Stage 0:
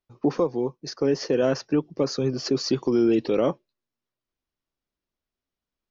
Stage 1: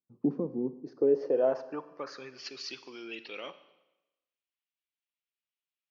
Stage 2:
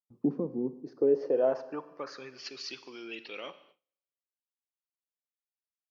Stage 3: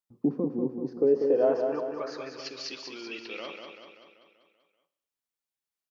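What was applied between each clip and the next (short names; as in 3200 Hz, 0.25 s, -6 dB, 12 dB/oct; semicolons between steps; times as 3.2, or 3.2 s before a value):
band-pass sweep 220 Hz -> 2700 Hz, 0.59–2.48; Schroeder reverb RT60 1 s, combs from 31 ms, DRR 13 dB
gate with hold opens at -51 dBFS
feedback echo 0.193 s, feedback 55%, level -5.5 dB; gain +2 dB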